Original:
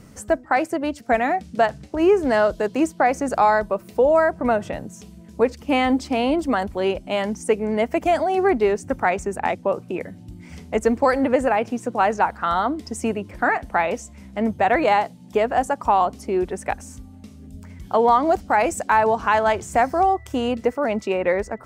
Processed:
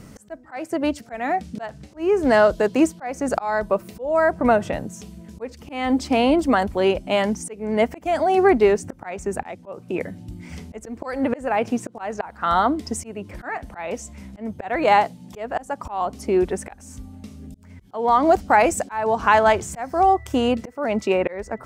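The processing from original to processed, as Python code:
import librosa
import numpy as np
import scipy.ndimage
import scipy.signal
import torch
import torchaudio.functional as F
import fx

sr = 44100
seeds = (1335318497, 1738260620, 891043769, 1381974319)

y = fx.auto_swell(x, sr, attack_ms=346.0)
y = y * librosa.db_to_amplitude(3.0)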